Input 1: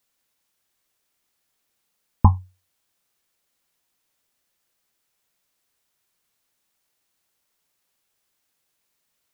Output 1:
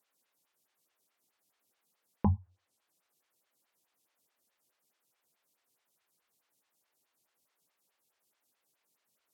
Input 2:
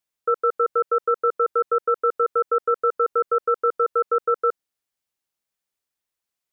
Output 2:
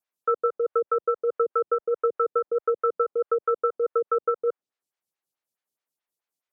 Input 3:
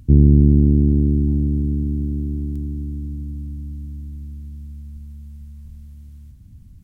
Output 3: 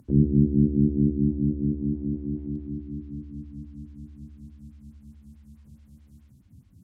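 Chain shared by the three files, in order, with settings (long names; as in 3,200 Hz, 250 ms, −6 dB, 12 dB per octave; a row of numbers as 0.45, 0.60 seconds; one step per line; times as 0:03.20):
treble cut that deepens with the level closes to 450 Hz, closed at −14.5 dBFS
high-pass filter 99 Hz 12 dB per octave
dynamic equaliser 190 Hz, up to +4 dB, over −33 dBFS, Q 4.4
in parallel at +2 dB: brickwall limiter −12.5 dBFS
on the sum: phaser with staggered stages 4.7 Hz
level −6.5 dB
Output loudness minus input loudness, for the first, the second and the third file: −12.0, −3.5, −6.5 LU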